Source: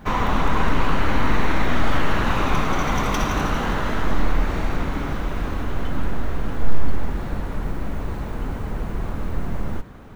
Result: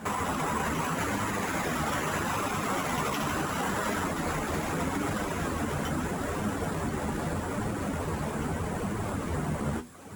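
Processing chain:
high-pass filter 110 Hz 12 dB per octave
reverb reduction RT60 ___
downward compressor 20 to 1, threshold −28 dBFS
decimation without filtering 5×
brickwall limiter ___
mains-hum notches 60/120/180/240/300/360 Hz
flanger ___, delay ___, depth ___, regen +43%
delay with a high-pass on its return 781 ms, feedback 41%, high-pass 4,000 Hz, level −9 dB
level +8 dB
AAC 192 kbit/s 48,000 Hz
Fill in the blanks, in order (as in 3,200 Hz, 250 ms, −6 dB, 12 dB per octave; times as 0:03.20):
0.9 s, −25 dBFS, 0.78 Hz, 9.3 ms, 4.8 ms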